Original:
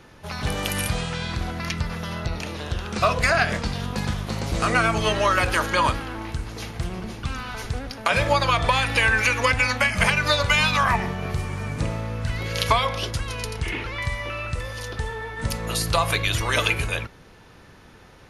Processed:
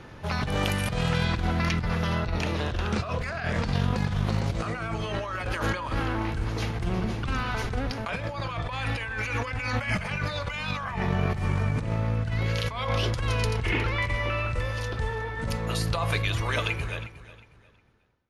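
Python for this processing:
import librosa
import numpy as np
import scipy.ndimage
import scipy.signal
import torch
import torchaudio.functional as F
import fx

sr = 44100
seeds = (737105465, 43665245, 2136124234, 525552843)

y = fx.fade_out_tail(x, sr, length_s=4.63)
y = fx.lowpass(y, sr, hz=3300.0, slope=6)
y = fx.peak_eq(y, sr, hz=110.0, db=4.0, octaves=0.77)
y = fx.over_compress(y, sr, threshold_db=-28.0, ratio=-1.0)
y = fx.echo_feedback(y, sr, ms=361, feedback_pct=27, wet_db=-16)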